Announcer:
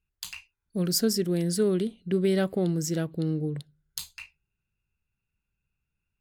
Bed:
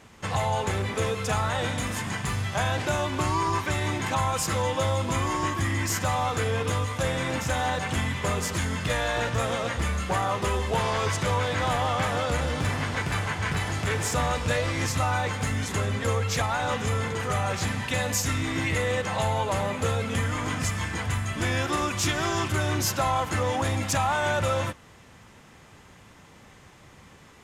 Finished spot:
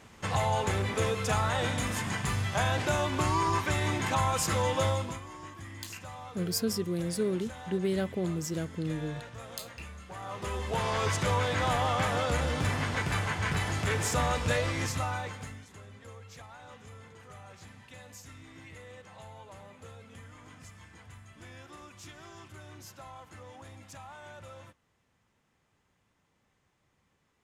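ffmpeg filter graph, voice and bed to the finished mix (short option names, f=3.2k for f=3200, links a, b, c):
-filter_complex "[0:a]adelay=5600,volume=-5.5dB[a];[1:a]volume=13.5dB,afade=t=out:st=4.87:d=0.33:silence=0.158489,afade=t=in:st=10.14:d=0.95:silence=0.16788,afade=t=out:st=14.56:d=1.09:silence=0.1[b];[a][b]amix=inputs=2:normalize=0"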